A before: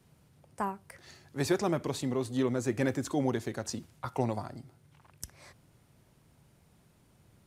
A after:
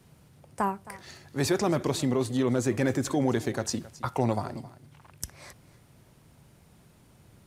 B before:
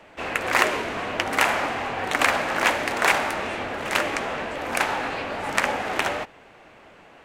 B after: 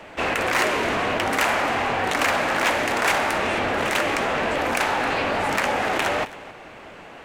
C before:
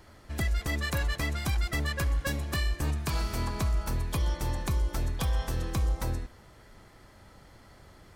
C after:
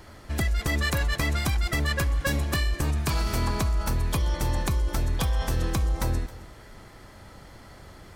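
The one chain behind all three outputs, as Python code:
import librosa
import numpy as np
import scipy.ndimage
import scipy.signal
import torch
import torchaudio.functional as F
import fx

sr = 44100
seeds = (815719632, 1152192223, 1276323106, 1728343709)

p1 = fx.over_compress(x, sr, threshold_db=-31.0, ratio=-1.0)
p2 = x + F.gain(torch.from_numpy(p1), -1.5).numpy()
p3 = np.clip(p2, -10.0 ** (-14.5 / 20.0), 10.0 ** (-14.5 / 20.0))
y = p3 + 10.0 ** (-18.5 / 20.0) * np.pad(p3, (int(267 * sr / 1000.0), 0))[:len(p3)]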